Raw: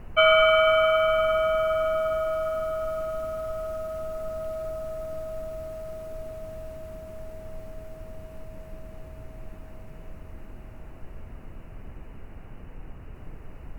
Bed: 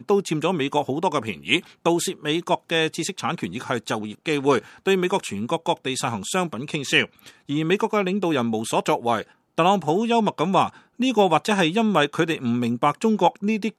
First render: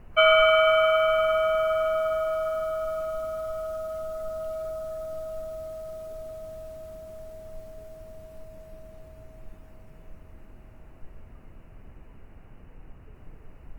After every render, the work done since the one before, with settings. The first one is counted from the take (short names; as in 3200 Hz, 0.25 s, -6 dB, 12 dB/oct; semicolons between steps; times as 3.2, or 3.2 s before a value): noise print and reduce 6 dB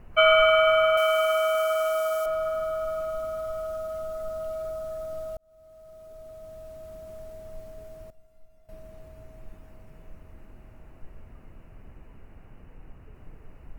0.97–2.26 tone controls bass -15 dB, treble +14 dB; 5.37–7.12 fade in; 8.1–8.69 resonator 690 Hz, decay 0.25 s, mix 90%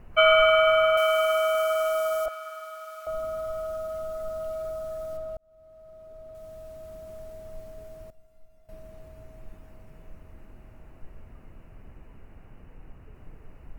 2.28–3.07 HPF 1400 Hz; 5.17–6.35 high shelf 4100 Hz -11.5 dB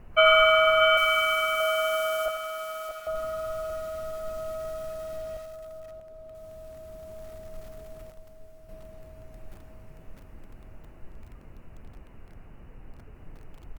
on a send: echo 0.63 s -7 dB; on the sum: lo-fi delay 87 ms, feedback 35%, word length 7-bit, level -10 dB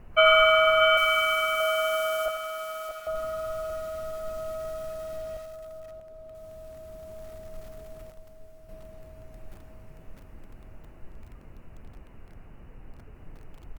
nothing audible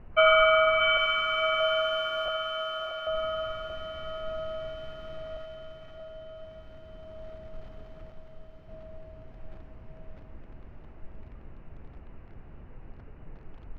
air absorption 250 m; diffused feedback echo 0.616 s, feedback 59%, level -7 dB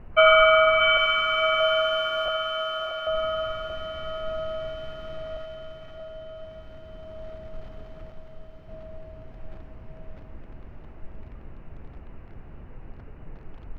gain +4 dB